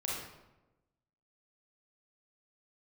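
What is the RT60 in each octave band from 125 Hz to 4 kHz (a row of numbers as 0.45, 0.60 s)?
1.3, 1.2, 1.1, 0.95, 0.80, 0.65 s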